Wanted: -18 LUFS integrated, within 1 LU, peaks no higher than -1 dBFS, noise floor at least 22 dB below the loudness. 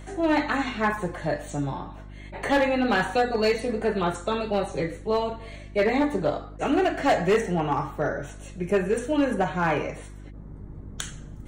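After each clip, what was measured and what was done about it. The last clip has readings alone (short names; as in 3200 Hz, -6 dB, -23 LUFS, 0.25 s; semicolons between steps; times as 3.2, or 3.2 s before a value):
clipped 1.1%; flat tops at -15.5 dBFS; hum 50 Hz; harmonics up to 350 Hz; hum level -39 dBFS; loudness -25.5 LUFS; peak -15.5 dBFS; loudness target -18.0 LUFS
-> clip repair -15.5 dBFS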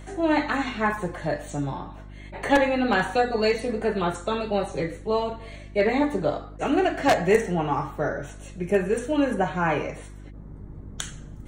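clipped 0.0%; hum 50 Hz; harmonics up to 350 Hz; hum level -39 dBFS
-> de-hum 50 Hz, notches 7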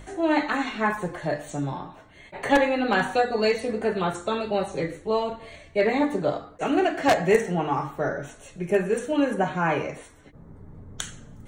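hum none; loudness -25.0 LUFS; peak -6.5 dBFS; loudness target -18.0 LUFS
-> gain +7 dB; limiter -1 dBFS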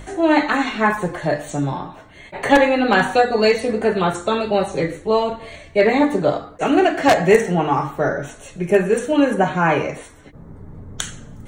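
loudness -18.0 LUFS; peak -1.0 dBFS; noise floor -42 dBFS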